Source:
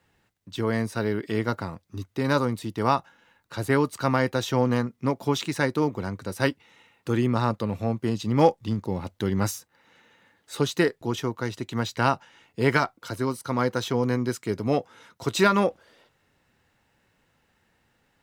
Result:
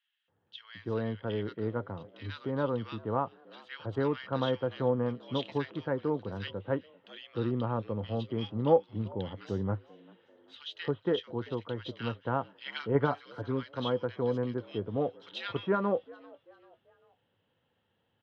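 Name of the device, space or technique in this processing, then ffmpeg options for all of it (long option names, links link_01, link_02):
frequency-shifting delay pedal into a guitar cabinet: -filter_complex "[0:a]asplit=4[link_01][link_02][link_03][link_04];[link_02]adelay=392,afreqshift=79,volume=-23.5dB[link_05];[link_03]adelay=784,afreqshift=158,volume=-30.4dB[link_06];[link_04]adelay=1176,afreqshift=237,volume=-37.4dB[link_07];[link_01][link_05][link_06][link_07]amix=inputs=4:normalize=0,highpass=97,equalizer=frequency=100:width_type=q:width=4:gain=7,equalizer=frequency=500:width_type=q:width=4:gain=6,equalizer=frequency=2200:width_type=q:width=4:gain=-5,lowpass=frequency=3500:width=0.5412,lowpass=frequency=3500:width=1.3066,equalizer=frequency=3200:width=6.9:gain=13,asettb=1/sr,asplit=3[link_08][link_09][link_10];[link_08]atrim=end=12.664[link_11];[link_09]atrim=start=12.66:end=13.35,asetpts=PTS-STARTPTS,afade=type=in:duration=0.004:curve=qsin,afade=type=out:start_time=0.686:duration=0.004:curve=qsin,aecho=1:1:6.9:0.73,atrim=end_sample=30429[link_12];[link_10]atrim=start=13.346[link_13];[link_11][link_12]acrossfade=duration=0.004:curve1=hsin:curve2=qsin[link_14];[link_14][link_13]acrossfade=duration=0.004:curve1=qsin:curve2=hsin,acrossover=split=1700[link_15][link_16];[link_15]adelay=280[link_17];[link_17][link_16]amix=inputs=2:normalize=0,volume=-8.5dB"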